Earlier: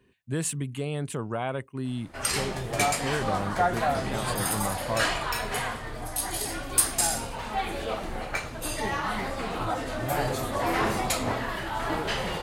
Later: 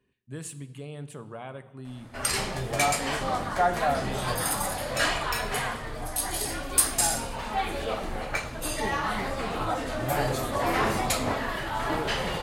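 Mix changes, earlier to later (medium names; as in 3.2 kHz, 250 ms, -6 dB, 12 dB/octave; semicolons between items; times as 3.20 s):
speech -10.5 dB; reverb: on, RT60 1.4 s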